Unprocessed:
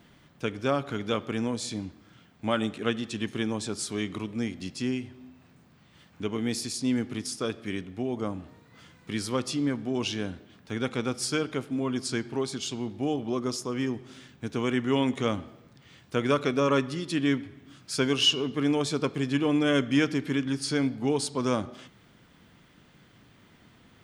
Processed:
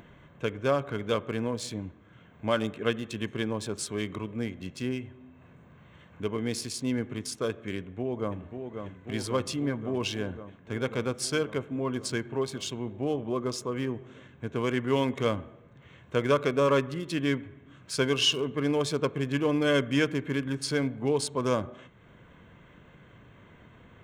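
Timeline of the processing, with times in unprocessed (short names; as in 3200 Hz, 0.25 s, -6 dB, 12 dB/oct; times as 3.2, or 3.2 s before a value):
7.77–8.4 echo throw 0.54 s, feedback 80%, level -6.5 dB
whole clip: Wiener smoothing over 9 samples; comb 1.9 ms, depth 34%; upward compressor, threshold -46 dBFS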